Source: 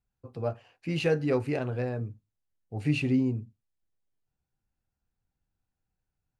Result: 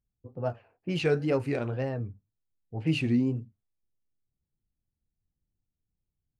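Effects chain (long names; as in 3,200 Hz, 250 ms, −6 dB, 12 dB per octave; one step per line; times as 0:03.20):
low-pass that shuts in the quiet parts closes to 380 Hz, open at −25 dBFS
tape wow and flutter 130 cents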